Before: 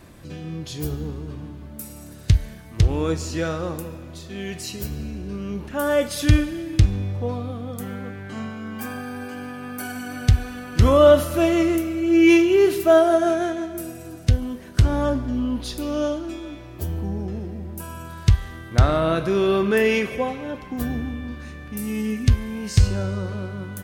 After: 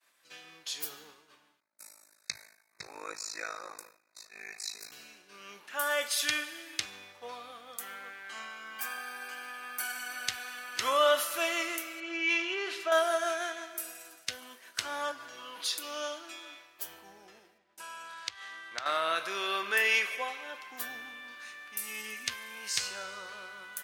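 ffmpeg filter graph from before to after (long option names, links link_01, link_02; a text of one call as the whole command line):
ffmpeg -i in.wav -filter_complex "[0:a]asettb=1/sr,asplit=3[link_01][link_02][link_03];[link_01]atrim=end=1.604[link_04];[link_02]atrim=start=1.6:end=4.92,asetpts=PTS-STARTPTS,afade=type=in:duration=0.004:curve=qsin,afade=type=out:start_time=3.316:duration=0.004:curve=qsin,acrossover=split=9300[link_05][link_06];[link_06]acompressor=threshold=-51dB:ratio=4:attack=1:release=60[link_07];[link_05][link_07]amix=inputs=2:normalize=0,tremolo=f=53:d=1,asuperstop=centerf=3100:order=20:qfactor=2.7[link_08];[link_03]atrim=start=4.916[link_09];[link_04][link_08]acrossfade=duration=0.004:curve1=hsin:curve2=qsin[link_10];[link_10][link_09]acrossfade=duration=0.004:curve1=qsin:curve2=hsin,asettb=1/sr,asplit=3[link_11][link_12][link_13];[link_11]atrim=end=12.004[link_14];[link_12]atrim=start=12:end=12.92,asetpts=PTS-STARTPTS,afade=type=in:duration=0.004:curve=qsin,afade=type=out:start_time=0.916:duration=0.004:curve=qsin,lowpass=4500,acompressor=threshold=-14dB:ratio=6:attack=3.2:release=140:knee=1:detection=peak[link_15];[link_13]atrim=start=12.916[link_16];[link_14][link_15]acrossfade=duration=0.004:curve1=hsin:curve2=qsin[link_17];[link_17][link_16]acrossfade=duration=0.004:curve1=qsin:curve2=hsin,asettb=1/sr,asplit=3[link_18][link_19][link_20];[link_18]atrim=end=15.114[link_21];[link_19]atrim=start=15.11:end=15.84,asetpts=PTS-STARTPTS,afade=type=in:duration=0.004:curve=qsin,afade=type=out:start_time=0.726:duration=0.004:curve=qsin,bandreject=frequency=50:width_type=h:width=6,bandreject=frequency=100:width_type=h:width=6,bandreject=frequency=150:width_type=h:width=6,aecho=1:1:6.2:0.89,atrim=end_sample=32193,acompressor=threshold=-25dB:ratio=4:attack=3.2:release=140:knee=1:detection=peak[link_22];[link_20]atrim=start=15.836[link_23];[link_21][link_22]acrossfade=duration=0.004:curve1=hsin:curve2=qsin[link_24];[link_24][link_23]acrossfade=duration=0.004:curve1=qsin:curve2=hsin,asettb=1/sr,asplit=3[link_25][link_26][link_27];[link_25]atrim=end=17.584[link_28];[link_26]atrim=start=17.58:end=18.86,asetpts=PTS-STARTPTS,afade=type=in:duration=0.004:curve=qsin,afade=type=out:start_time=1.276:duration=0.004:curve=qsin,lowpass=6400,asoftclip=type=hard:threshold=-7.5dB,acompressor=threshold=-25dB:ratio=3:attack=3.2:release=140:knee=1:detection=peak[link_29];[link_27]atrim=start=18.856[link_30];[link_28][link_29]acrossfade=duration=0.004:curve1=hsin:curve2=qsin[link_31];[link_31][link_30]acrossfade=duration=0.004:curve1=qsin:curve2=hsin,highpass=1300,agate=range=-33dB:threshold=-47dB:ratio=3:detection=peak" out.wav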